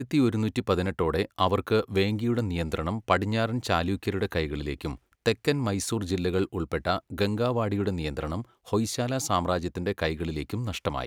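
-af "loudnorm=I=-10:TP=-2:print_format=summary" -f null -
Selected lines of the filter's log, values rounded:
Input Integrated:    -28.3 LUFS
Input True Peak:      -7.2 dBTP
Input LRA:             2.7 LU
Input Threshold:     -38.3 LUFS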